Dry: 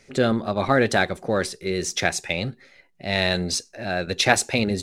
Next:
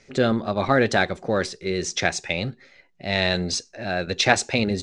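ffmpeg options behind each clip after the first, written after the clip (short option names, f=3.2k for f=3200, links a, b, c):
-af "lowpass=f=7.4k:w=0.5412,lowpass=f=7.4k:w=1.3066"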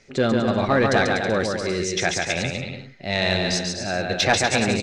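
-filter_complex "[0:a]asplit=2[a][b];[b]aecho=0:1:140|245|323.8|382.8|427.1:0.631|0.398|0.251|0.158|0.1[c];[a][c]amix=inputs=2:normalize=0,asoftclip=type=tanh:threshold=-6.5dB"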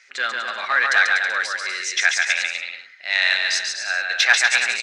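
-af "highpass=f=1.6k:t=q:w=2.2,volume=2dB"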